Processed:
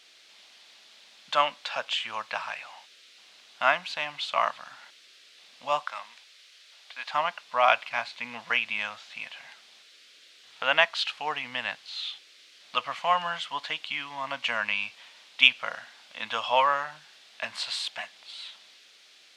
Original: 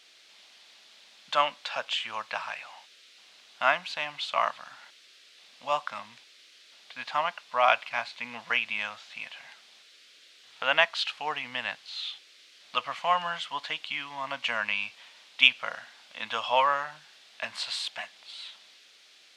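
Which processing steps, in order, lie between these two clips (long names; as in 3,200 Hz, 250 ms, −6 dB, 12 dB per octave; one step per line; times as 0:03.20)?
0:05.83–0:07.14: high-pass filter 540 Hz 12 dB per octave
level +1 dB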